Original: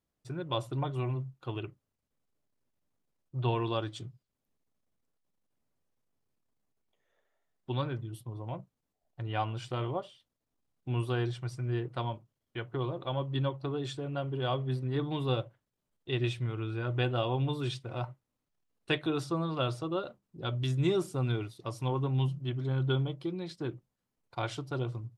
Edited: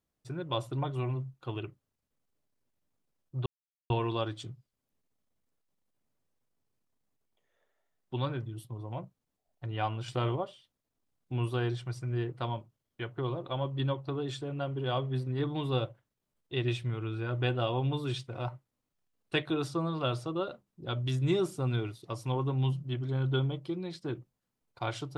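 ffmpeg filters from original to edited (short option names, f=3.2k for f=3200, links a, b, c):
-filter_complex "[0:a]asplit=4[a][b][c][d];[a]atrim=end=3.46,asetpts=PTS-STARTPTS,afade=t=out:st=3.456:d=0.004:c=hsin,apad=pad_dur=0.44[e];[b]atrim=start=3.46:end=9.642,asetpts=PTS-STARTPTS,afade=t=in:d=0.004:c=hsin[f];[c]atrim=start=9.638:end=9.922,asetpts=PTS-STARTPTS,volume=3.5dB[g];[d]atrim=start=9.918[h];[e][f]concat=n=2:v=0:a=1[i];[i][g]acrossfade=d=0.004:c1=hsin:c2=hsin[j];[j][h]acrossfade=d=0.004:c1=hsin:c2=hsin"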